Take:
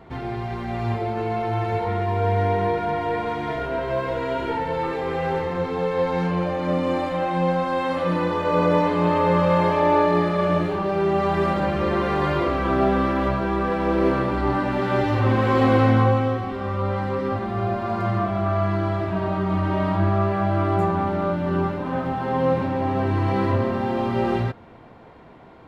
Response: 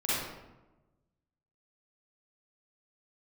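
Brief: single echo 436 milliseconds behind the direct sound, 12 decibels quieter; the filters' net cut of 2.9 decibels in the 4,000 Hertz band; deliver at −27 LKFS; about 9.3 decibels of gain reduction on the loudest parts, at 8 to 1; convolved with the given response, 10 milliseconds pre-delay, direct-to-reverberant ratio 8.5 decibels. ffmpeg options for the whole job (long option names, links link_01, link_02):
-filter_complex "[0:a]equalizer=frequency=4000:width_type=o:gain=-4,acompressor=threshold=-23dB:ratio=8,aecho=1:1:436:0.251,asplit=2[link_01][link_02];[1:a]atrim=start_sample=2205,adelay=10[link_03];[link_02][link_03]afir=irnorm=-1:irlink=0,volume=-17.5dB[link_04];[link_01][link_04]amix=inputs=2:normalize=0,volume=-1dB"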